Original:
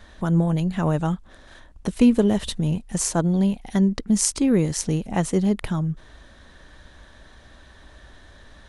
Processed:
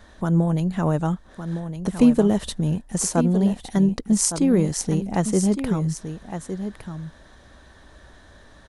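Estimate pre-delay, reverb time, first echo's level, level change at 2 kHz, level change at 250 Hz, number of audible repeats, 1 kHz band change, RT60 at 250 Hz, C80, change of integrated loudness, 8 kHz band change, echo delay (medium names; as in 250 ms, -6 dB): no reverb, no reverb, -9.5 dB, -1.5 dB, +1.0 dB, 1, +1.0 dB, no reverb, no reverb, 0.0 dB, +0.5 dB, 1161 ms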